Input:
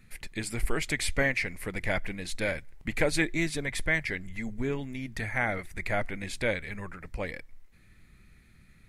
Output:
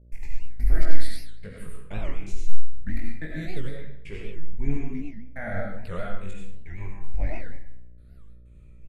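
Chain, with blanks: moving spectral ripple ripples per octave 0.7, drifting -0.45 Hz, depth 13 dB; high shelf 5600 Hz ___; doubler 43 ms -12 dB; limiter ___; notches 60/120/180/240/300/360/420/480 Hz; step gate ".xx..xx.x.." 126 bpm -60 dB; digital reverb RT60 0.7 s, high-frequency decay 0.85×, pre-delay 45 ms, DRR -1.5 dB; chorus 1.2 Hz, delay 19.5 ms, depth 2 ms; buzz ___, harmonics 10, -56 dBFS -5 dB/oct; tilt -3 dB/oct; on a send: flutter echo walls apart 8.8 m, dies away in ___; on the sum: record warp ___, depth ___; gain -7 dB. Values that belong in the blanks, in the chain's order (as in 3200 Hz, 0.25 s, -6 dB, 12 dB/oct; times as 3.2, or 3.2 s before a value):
+9 dB, -14 dBFS, 60 Hz, 0.28 s, 78 rpm, 250 cents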